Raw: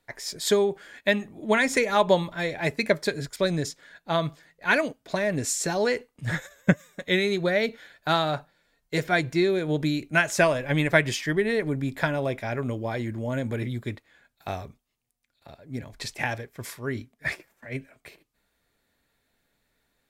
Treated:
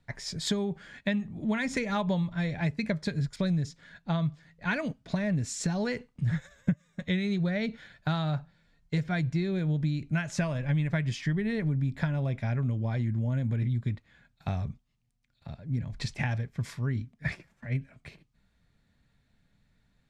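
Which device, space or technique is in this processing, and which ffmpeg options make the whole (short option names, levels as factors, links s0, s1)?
jukebox: -af "lowpass=6500,lowshelf=f=250:t=q:w=1.5:g=11.5,acompressor=threshold=0.0562:ratio=4,volume=0.794"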